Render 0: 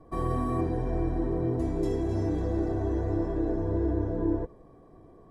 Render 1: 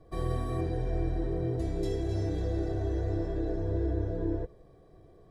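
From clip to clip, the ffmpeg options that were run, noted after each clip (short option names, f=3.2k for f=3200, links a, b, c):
-af "equalizer=f=250:t=o:w=0.67:g=-11,equalizer=f=1k:t=o:w=0.67:g=-11,equalizer=f=4k:t=o:w=0.67:g=7"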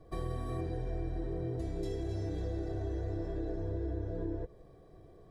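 -af "acompressor=threshold=-35dB:ratio=2.5"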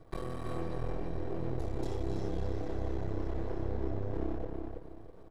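-filter_complex "[0:a]aeval=exprs='max(val(0),0)':c=same,asplit=2[a][b];[b]adelay=328,lowpass=f=4.1k:p=1,volume=-4dB,asplit=2[c][d];[d]adelay=328,lowpass=f=4.1k:p=1,volume=0.3,asplit=2[e][f];[f]adelay=328,lowpass=f=4.1k:p=1,volume=0.3,asplit=2[g][h];[h]adelay=328,lowpass=f=4.1k:p=1,volume=0.3[i];[a][c][e][g][i]amix=inputs=5:normalize=0,volume=3dB"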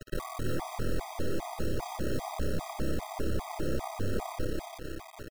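-af "acrusher=bits=7:mix=0:aa=0.000001,aeval=exprs='0.0335*(abs(mod(val(0)/0.0335+3,4)-2)-1)':c=same,afftfilt=real='re*gt(sin(2*PI*2.5*pts/sr)*(1-2*mod(floor(b*sr/1024/640),2)),0)':imag='im*gt(sin(2*PI*2.5*pts/sr)*(1-2*mod(floor(b*sr/1024/640),2)),0)':win_size=1024:overlap=0.75,volume=8dB"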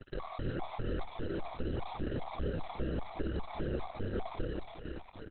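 -af "aecho=1:1:1151:0.158,volume=-1dB" -ar 48000 -c:a libopus -b:a 8k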